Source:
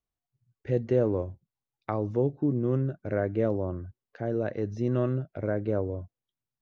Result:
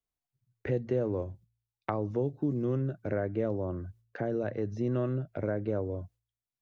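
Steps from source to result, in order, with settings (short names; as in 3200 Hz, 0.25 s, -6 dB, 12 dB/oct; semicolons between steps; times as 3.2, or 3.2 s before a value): gate with hold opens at -47 dBFS; de-hum 57.29 Hz, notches 2; three-band squash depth 70%; gain -3.5 dB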